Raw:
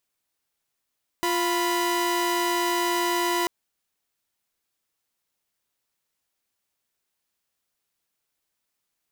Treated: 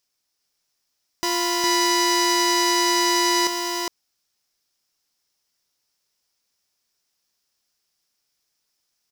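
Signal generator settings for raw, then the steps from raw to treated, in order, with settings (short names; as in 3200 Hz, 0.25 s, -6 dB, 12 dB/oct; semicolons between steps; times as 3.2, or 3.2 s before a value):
chord F4/B5 saw, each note -22.5 dBFS 2.24 s
bell 5300 Hz +12.5 dB 0.55 oct; on a send: echo 0.409 s -3.5 dB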